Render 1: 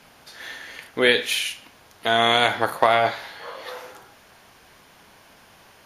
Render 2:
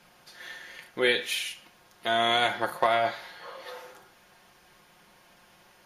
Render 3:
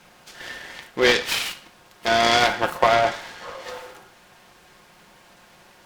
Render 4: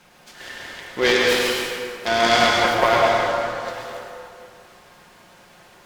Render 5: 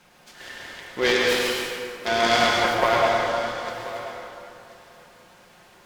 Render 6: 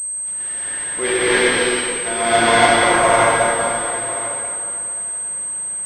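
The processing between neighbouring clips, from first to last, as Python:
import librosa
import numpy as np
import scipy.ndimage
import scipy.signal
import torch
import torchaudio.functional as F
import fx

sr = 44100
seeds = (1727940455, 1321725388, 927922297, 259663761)

y1 = x + 0.53 * np.pad(x, (int(5.6 * sr / 1000.0), 0))[:len(x)]
y1 = F.gain(torch.from_numpy(y1), -7.5).numpy()
y2 = fx.noise_mod_delay(y1, sr, seeds[0], noise_hz=1200.0, depth_ms=0.043)
y2 = F.gain(torch.from_numpy(y2), 6.5).numpy()
y3 = fx.rev_plate(y2, sr, seeds[1], rt60_s=2.3, hf_ratio=0.6, predelay_ms=90, drr_db=-2.0)
y3 = F.gain(torch.from_numpy(y3), -1.5).numpy()
y4 = y3 + 10.0 ** (-16.0 / 20.0) * np.pad(y3, (int(1032 * sr / 1000.0), 0))[:len(y3)]
y4 = F.gain(torch.from_numpy(y4), -3.0).numpy()
y5 = fx.rev_gated(y4, sr, seeds[2], gate_ms=330, shape='rising', drr_db=-7.5)
y5 = fx.pwm(y5, sr, carrier_hz=8300.0)
y5 = F.gain(torch.from_numpy(y5), -1.5).numpy()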